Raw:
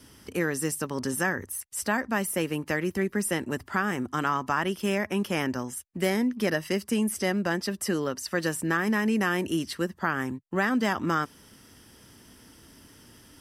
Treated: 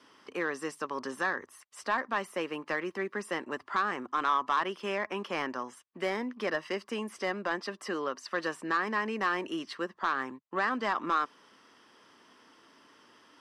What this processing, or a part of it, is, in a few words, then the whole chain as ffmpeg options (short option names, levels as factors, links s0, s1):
intercom: -af "highpass=380,lowpass=4000,equalizer=f=1100:t=o:w=0.39:g=9,asoftclip=type=tanh:threshold=0.15,volume=0.75"